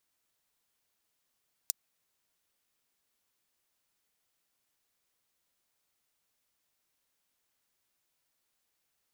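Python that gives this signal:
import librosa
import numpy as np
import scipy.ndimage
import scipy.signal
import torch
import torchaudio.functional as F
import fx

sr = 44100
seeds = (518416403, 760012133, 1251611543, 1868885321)

y = fx.drum_hat(sr, length_s=0.24, from_hz=5600.0, decay_s=0.02)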